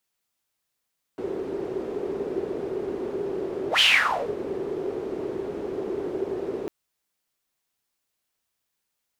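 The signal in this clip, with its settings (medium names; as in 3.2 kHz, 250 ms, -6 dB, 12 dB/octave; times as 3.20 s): whoosh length 5.50 s, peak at 2.62 s, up 0.10 s, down 0.57 s, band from 390 Hz, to 3.1 kHz, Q 7.2, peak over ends 13 dB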